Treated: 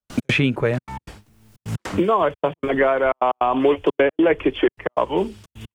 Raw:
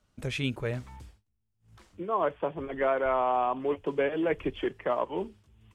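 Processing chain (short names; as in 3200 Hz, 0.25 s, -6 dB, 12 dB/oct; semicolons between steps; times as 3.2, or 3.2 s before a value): spectral gain 3.53–4.72, 250–3600 Hz +7 dB; step gate ".x.xxxxx" 154 bpm -60 dB; three-band squash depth 100%; gain +7.5 dB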